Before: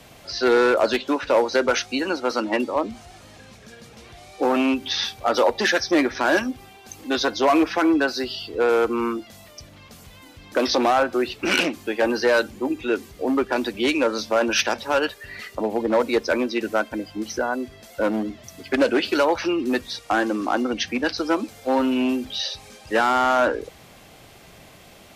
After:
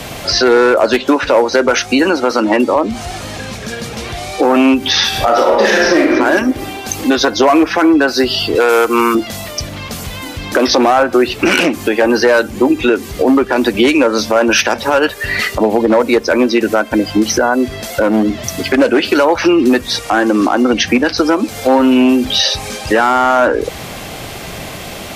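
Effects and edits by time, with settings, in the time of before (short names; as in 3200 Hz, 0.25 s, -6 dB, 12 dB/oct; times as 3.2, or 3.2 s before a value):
5.08–6.1 reverb throw, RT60 1 s, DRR -3.5 dB
8.55–9.15 tilt +3 dB/oct
whole clip: dynamic EQ 4000 Hz, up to -5 dB, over -38 dBFS, Q 1.2; compressor 4:1, threshold -29 dBFS; maximiser +21.5 dB; gain -1 dB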